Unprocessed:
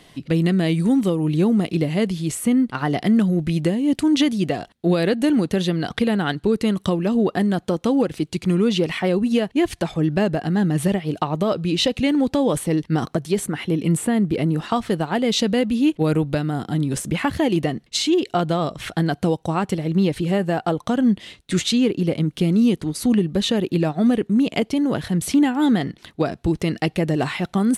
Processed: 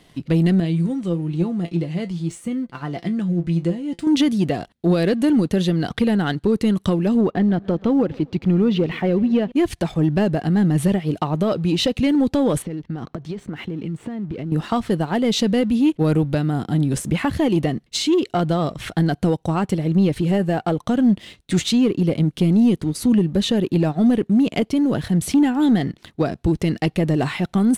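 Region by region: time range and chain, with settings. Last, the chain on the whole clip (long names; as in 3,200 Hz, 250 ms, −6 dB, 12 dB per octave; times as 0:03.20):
0:00.60–0:04.07: low-pass filter 9,000 Hz 24 dB per octave + tuned comb filter 170 Hz, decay 0.15 s, mix 80%
0:07.21–0:09.52: high-frequency loss of the air 230 metres + feedback echo with a swinging delay time 135 ms, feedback 49%, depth 90 cents, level −23 dB
0:12.62–0:14.52: downward compressor 16 to 1, threshold −26 dBFS + high-frequency loss of the air 150 metres
whole clip: leveller curve on the samples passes 1; low-shelf EQ 360 Hz +5 dB; level −4.5 dB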